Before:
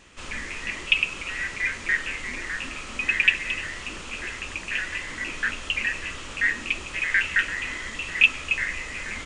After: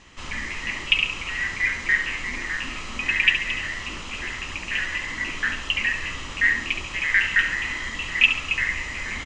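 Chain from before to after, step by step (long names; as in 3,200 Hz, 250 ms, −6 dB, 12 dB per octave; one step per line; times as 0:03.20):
low-pass filter 7,200 Hz 24 dB per octave
comb filter 1 ms, depth 31%
on a send: flutter between parallel walls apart 11.9 metres, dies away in 0.48 s
on the sum: level +1.5 dB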